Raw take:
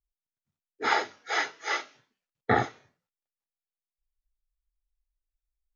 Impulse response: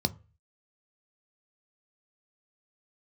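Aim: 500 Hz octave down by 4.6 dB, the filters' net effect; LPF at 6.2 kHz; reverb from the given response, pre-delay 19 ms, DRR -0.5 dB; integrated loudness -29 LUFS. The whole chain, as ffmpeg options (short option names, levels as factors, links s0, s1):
-filter_complex "[0:a]lowpass=6200,equalizer=f=500:t=o:g=-6,asplit=2[s0][s1];[1:a]atrim=start_sample=2205,adelay=19[s2];[s1][s2]afir=irnorm=-1:irlink=0,volume=0.501[s3];[s0][s3]amix=inputs=2:normalize=0,volume=0.708"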